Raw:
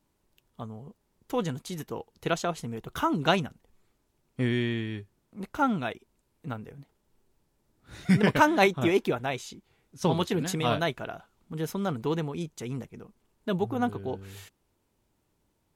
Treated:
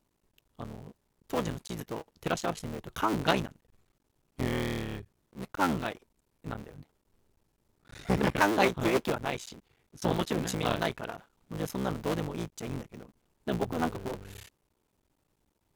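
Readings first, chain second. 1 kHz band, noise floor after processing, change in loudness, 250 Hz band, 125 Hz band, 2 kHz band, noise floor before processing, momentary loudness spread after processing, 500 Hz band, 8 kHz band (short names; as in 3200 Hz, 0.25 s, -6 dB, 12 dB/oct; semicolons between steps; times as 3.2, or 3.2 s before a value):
-2.5 dB, -77 dBFS, -3.5 dB, -4.0 dB, -4.0 dB, -3.0 dB, -74 dBFS, 19 LU, -3.0 dB, -0.5 dB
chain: cycle switcher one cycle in 3, muted; core saturation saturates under 860 Hz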